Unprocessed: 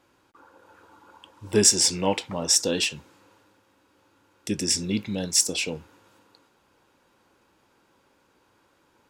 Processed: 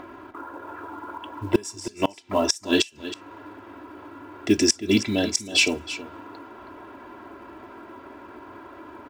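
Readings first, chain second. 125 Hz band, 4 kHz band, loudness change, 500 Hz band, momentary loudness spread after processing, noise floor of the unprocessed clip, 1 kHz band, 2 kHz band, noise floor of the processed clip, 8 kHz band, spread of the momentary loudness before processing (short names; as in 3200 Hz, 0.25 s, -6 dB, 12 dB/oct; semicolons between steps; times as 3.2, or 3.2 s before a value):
-1.0 dB, -0.5 dB, -1.5 dB, +2.0 dB, 23 LU, -65 dBFS, +4.5 dB, +6.0 dB, -47 dBFS, -6.5 dB, 13 LU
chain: low-pass opened by the level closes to 1600 Hz, open at -19 dBFS; HPF 110 Hz 6 dB/oct; comb 3 ms, depth 86%; in parallel at +2 dB: upward compressor, threshold -30 dBFS; on the sum: flipped gate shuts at -6 dBFS, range -29 dB; short-mantissa float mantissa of 4-bit; on a send: echo 0.321 s -14 dB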